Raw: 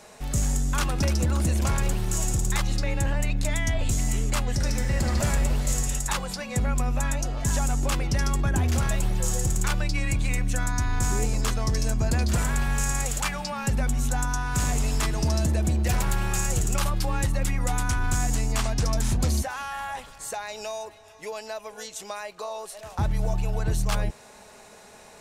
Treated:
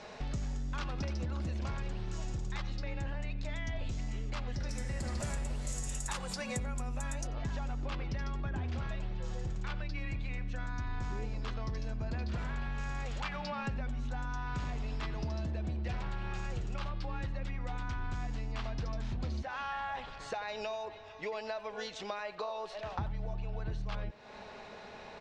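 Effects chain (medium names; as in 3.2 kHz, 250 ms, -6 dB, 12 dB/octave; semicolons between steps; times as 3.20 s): low-pass 5 kHz 24 dB/octave, from 4.69 s 10 kHz, from 7.27 s 4.3 kHz; compression 5:1, threshold -36 dBFS, peak gain reduction 14.5 dB; speakerphone echo 90 ms, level -14 dB; trim +1 dB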